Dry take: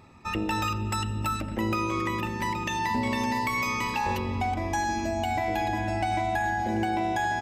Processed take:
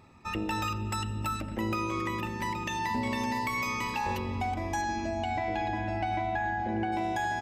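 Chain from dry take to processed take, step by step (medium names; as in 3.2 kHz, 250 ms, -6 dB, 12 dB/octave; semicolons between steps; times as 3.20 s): 4.81–6.91 s: low-pass 6.3 kHz -> 2.6 kHz 12 dB/octave; trim -3.5 dB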